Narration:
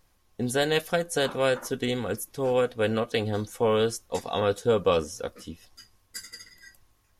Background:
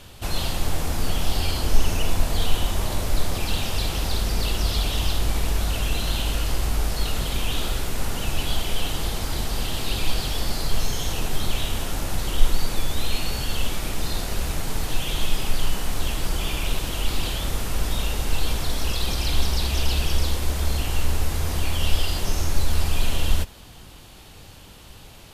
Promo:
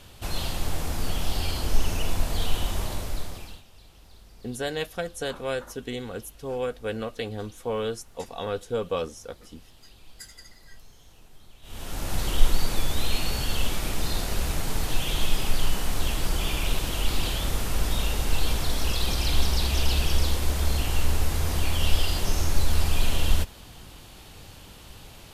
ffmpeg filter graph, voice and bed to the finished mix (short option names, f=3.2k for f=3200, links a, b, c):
-filter_complex "[0:a]adelay=4050,volume=-5.5dB[a];[1:a]volume=22.5dB,afade=t=out:st=2.78:d=0.85:silence=0.0668344,afade=t=in:st=11.62:d=0.58:silence=0.0473151[b];[a][b]amix=inputs=2:normalize=0"